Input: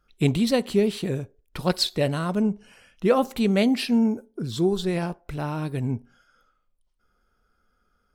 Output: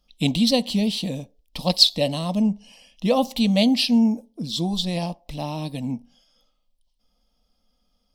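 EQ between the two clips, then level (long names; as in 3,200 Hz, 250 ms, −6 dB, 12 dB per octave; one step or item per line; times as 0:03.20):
flat-topped bell 4,000 Hz +8 dB 1.2 octaves
phaser with its sweep stopped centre 390 Hz, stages 6
+3.0 dB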